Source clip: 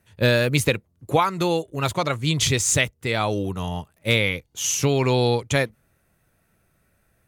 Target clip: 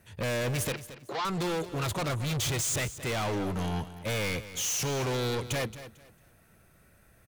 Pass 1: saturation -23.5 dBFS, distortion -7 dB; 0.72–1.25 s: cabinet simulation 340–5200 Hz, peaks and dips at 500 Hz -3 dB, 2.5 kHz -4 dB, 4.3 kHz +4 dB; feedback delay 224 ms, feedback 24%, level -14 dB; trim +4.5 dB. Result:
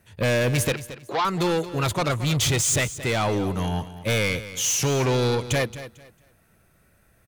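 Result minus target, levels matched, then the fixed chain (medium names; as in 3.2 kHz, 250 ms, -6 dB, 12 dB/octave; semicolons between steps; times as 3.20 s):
saturation: distortion -4 dB
saturation -33.5 dBFS, distortion -3 dB; 0.72–1.25 s: cabinet simulation 340–5200 Hz, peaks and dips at 500 Hz -3 dB, 2.5 kHz -4 dB, 4.3 kHz +4 dB; feedback delay 224 ms, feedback 24%, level -14 dB; trim +4.5 dB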